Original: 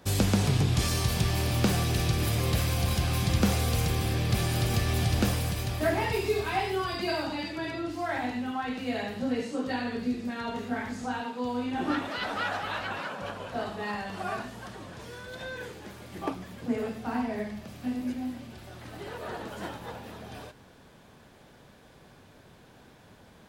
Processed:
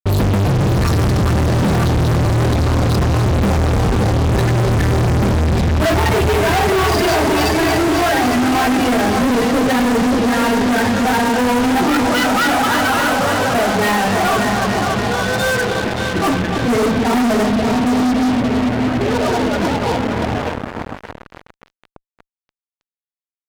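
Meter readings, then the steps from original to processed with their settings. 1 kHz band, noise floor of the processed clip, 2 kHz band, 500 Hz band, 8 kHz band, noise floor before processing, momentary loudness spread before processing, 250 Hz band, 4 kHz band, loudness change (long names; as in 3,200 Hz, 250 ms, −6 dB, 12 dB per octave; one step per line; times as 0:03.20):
+17.0 dB, below −85 dBFS, +16.0 dB, +16.0 dB, +11.0 dB, −55 dBFS, 15 LU, +16.0 dB, +12.0 dB, +14.5 dB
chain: spectral peaks only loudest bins 16
echo machine with several playback heads 287 ms, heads first and second, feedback 66%, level −11 dB
fuzz pedal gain 46 dB, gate −45 dBFS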